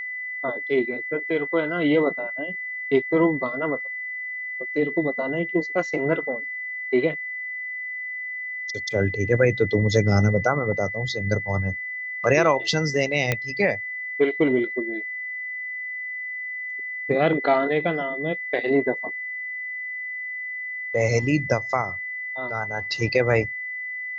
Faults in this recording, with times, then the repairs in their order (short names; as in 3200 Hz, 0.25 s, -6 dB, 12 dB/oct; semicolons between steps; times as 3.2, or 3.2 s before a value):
tone 2000 Hz -29 dBFS
13.32 pop -7 dBFS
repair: de-click; notch 2000 Hz, Q 30